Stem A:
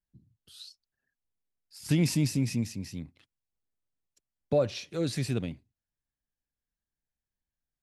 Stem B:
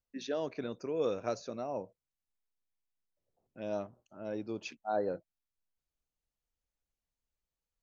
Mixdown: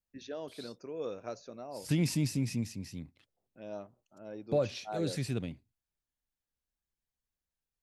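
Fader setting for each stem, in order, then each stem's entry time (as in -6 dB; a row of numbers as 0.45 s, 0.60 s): -4.0 dB, -6.0 dB; 0.00 s, 0.00 s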